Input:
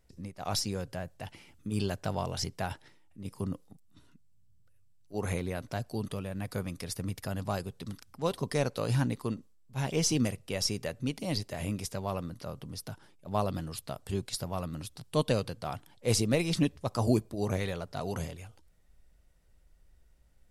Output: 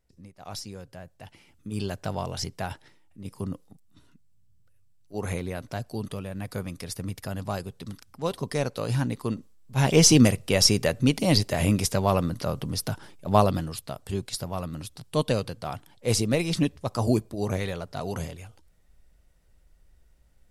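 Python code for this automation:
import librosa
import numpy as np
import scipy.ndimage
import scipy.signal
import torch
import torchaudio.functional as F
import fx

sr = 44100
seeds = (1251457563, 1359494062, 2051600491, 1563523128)

y = fx.gain(x, sr, db=fx.line((0.88, -6.0), (2.04, 2.0), (9.05, 2.0), (9.94, 11.5), (13.34, 11.5), (13.82, 3.0)))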